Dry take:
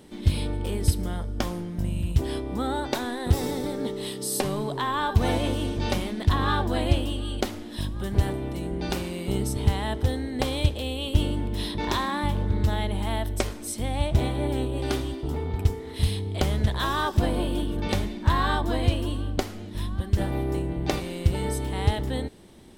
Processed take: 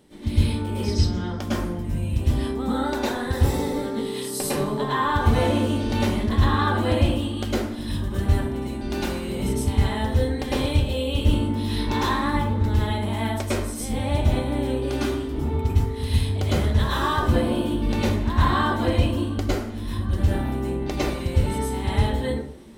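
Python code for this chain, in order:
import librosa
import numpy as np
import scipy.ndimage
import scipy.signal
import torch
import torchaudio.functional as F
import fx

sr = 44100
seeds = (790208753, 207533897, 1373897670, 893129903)

y = fx.high_shelf_res(x, sr, hz=7700.0, db=-13.5, q=3.0, at=(0.82, 1.37))
y = fx.rev_plate(y, sr, seeds[0], rt60_s=0.56, hf_ratio=0.5, predelay_ms=95, drr_db=-9.5)
y = y * 10.0 ** (-6.5 / 20.0)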